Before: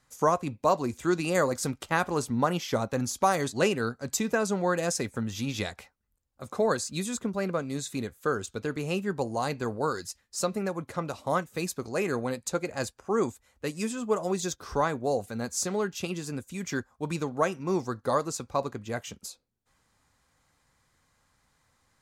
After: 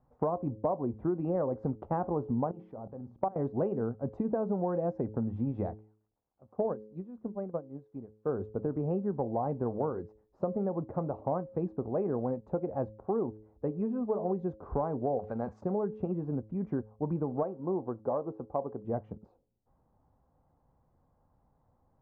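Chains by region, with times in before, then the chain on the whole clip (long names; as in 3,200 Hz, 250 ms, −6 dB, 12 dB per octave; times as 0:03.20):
0:02.51–0:03.36: output level in coarse steps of 22 dB + mains-hum notches 60/120/180/240/300/360/420 Hz
0:05.77–0:08.29: spike at every zero crossing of −32.5 dBFS + expander for the loud parts 2.5 to 1, over −35 dBFS
0:15.19–0:15.61: transient designer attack +7 dB, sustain +11 dB + tilt shelving filter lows −8.5 dB, about 860 Hz
0:17.43–0:18.85: low-pass filter 1,200 Hz 6 dB per octave + low-shelf EQ 200 Hz −11.5 dB
whole clip: Chebyshev low-pass filter 810 Hz, order 3; hum removal 107.4 Hz, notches 5; downward compressor 5 to 1, threshold −31 dBFS; level +3.5 dB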